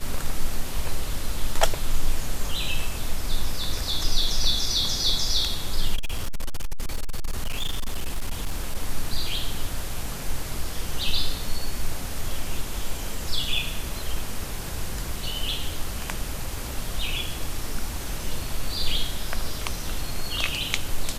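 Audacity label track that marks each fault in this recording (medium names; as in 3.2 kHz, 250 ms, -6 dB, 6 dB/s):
5.950000	8.760000	clipped -21 dBFS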